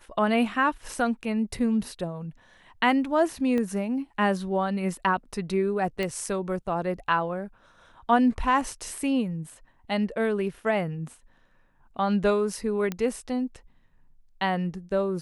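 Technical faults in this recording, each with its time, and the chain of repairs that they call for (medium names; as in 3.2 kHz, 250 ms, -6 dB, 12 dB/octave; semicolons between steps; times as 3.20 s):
3.58 s: pop -18 dBFS
6.03 s: pop -16 dBFS
12.92 s: pop -16 dBFS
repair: de-click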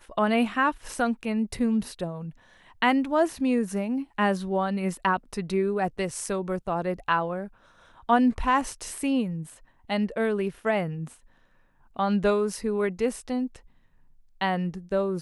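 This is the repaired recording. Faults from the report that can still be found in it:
3.58 s: pop
12.92 s: pop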